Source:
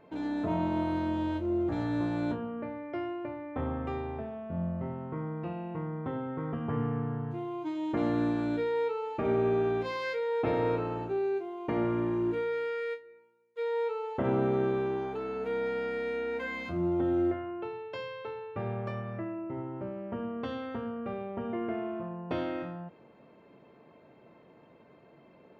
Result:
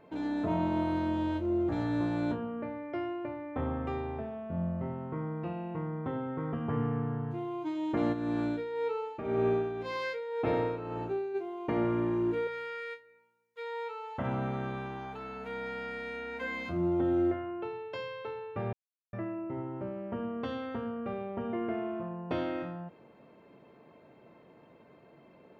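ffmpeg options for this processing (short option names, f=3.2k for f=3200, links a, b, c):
-filter_complex "[0:a]asplit=3[a][b][c];[a]afade=t=out:st=8.12:d=0.02[d];[b]tremolo=f=1.9:d=0.58,afade=t=in:st=8.12:d=0.02,afade=t=out:st=11.34:d=0.02[e];[c]afade=t=in:st=11.34:d=0.02[f];[d][e][f]amix=inputs=3:normalize=0,asettb=1/sr,asplit=3[g][h][i];[g]atrim=end=12.474[j];[h]atrim=start=12.47:end=16.41,asetpts=PTS-STARTPTS,afade=t=in:d=0.004:c=qsin,afade=t=out:st=3.936:d=0.004:c=qsin,equalizer=f=380:t=o:w=0.77:g=-14.5[k];[i]atrim=start=16.406[l];[j][k]acrossfade=d=0.004:c1=hsin:c2=qsin[m];[m][l]acrossfade=d=0.004:c1=qsin:c2=hsin,asplit=3[n][o][p];[n]atrim=end=18.73,asetpts=PTS-STARTPTS,afade=t=out:st=18.726:d=0.004:c=hsin[q];[o]atrim=start=18.73:end=19.13,asetpts=PTS-STARTPTS,volume=0[r];[p]atrim=start=19.13,asetpts=PTS-STARTPTS,afade=t=in:d=0.004:c=hsin[s];[q][r][s]concat=n=3:v=0:a=1"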